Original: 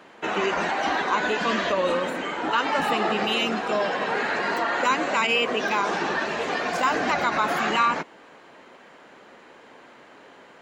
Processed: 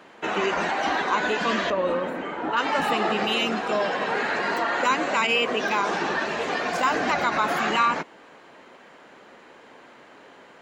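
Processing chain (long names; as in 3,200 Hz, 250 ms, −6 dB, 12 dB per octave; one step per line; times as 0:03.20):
0:01.70–0:02.57: parametric band 7,900 Hz −13.5 dB 2.8 octaves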